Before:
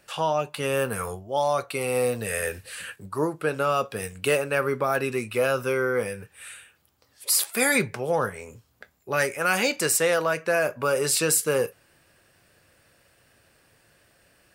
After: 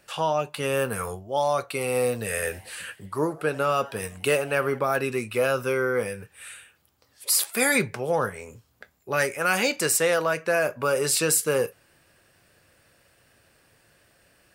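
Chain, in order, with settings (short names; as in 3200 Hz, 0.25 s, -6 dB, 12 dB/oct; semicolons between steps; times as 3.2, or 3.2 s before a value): 2.26–4.79 frequency-shifting echo 87 ms, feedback 59%, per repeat +130 Hz, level -22.5 dB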